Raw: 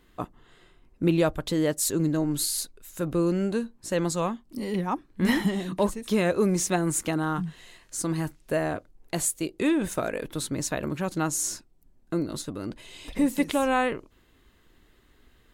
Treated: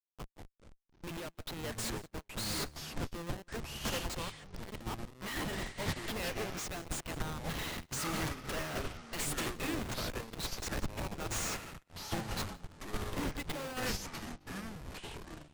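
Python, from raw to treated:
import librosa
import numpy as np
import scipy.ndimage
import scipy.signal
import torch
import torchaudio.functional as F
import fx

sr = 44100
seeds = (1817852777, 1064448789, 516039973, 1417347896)

y = fx.leveller(x, sr, passes=5, at=(7.45, 9.63))
y = fx.bandpass_q(y, sr, hz=3400.0, q=0.89)
y = fx.schmitt(y, sr, flips_db=-39.0)
y = y + 10.0 ** (-15.5 / 20.0) * np.pad(y, (int(176 * sr / 1000.0), 0))[:len(y)]
y = fx.echo_pitch(y, sr, ms=89, semitones=-7, count=3, db_per_echo=-3.0)
y = fx.upward_expand(y, sr, threshold_db=-53.0, expansion=2.5)
y = F.gain(torch.from_numpy(y), 3.5).numpy()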